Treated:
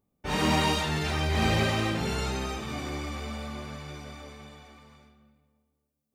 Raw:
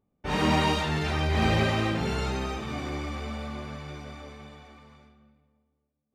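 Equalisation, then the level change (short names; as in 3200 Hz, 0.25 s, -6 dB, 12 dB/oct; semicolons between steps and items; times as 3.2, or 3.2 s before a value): high shelf 5600 Hz +10 dB; -1.5 dB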